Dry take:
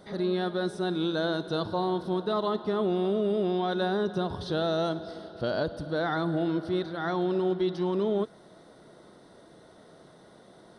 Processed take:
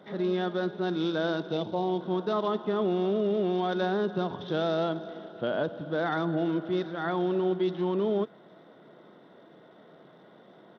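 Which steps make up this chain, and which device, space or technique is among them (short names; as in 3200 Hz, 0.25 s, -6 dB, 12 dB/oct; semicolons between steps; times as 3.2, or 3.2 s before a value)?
1.52–2.01 band shelf 1400 Hz -10 dB 1.1 oct; Bluetooth headset (HPF 140 Hz 24 dB/oct; downsampling 8000 Hz; SBC 64 kbps 32000 Hz)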